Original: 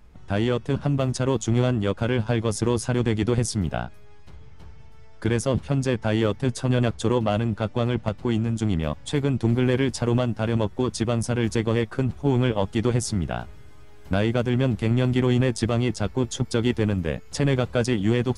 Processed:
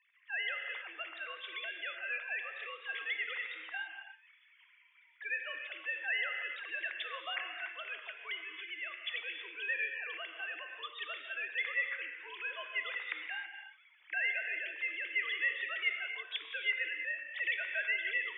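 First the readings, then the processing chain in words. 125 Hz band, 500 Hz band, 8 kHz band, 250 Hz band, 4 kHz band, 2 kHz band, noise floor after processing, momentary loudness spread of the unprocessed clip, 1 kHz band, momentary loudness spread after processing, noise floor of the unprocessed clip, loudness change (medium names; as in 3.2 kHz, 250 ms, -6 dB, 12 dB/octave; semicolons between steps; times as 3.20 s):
under -40 dB, -27.5 dB, under -40 dB, under -40 dB, -6.5 dB, +1.5 dB, -65 dBFS, 5 LU, -16.0 dB, 9 LU, -42 dBFS, -12.5 dB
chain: formants replaced by sine waves; resonant high-pass 2 kHz, resonance Q 3.7; gated-style reverb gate 350 ms flat, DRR 4 dB; frequency shift +94 Hz; trim -7 dB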